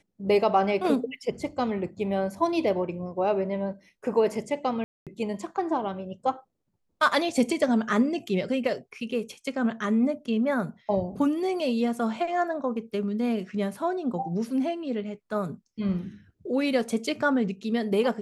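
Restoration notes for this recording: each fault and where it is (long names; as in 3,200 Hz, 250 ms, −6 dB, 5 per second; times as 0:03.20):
0:04.84–0:05.07: drop-out 227 ms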